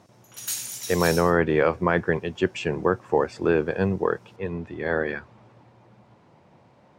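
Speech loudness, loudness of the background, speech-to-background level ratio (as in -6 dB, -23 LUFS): -24.5 LUFS, -31.5 LUFS, 7.0 dB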